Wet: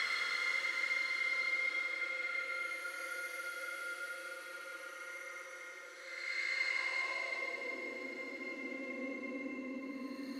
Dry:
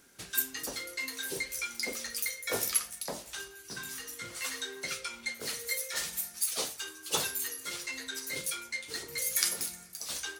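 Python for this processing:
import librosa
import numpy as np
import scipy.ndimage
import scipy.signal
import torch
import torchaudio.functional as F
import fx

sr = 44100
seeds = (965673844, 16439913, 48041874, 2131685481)

y = fx.paulstretch(x, sr, seeds[0], factor=36.0, window_s=0.05, from_s=0.79)
y = fx.filter_sweep_bandpass(y, sr, from_hz=1600.0, to_hz=380.0, start_s=6.38, end_s=7.79, q=1.7)
y = y * librosa.db_to_amplitude(8.5)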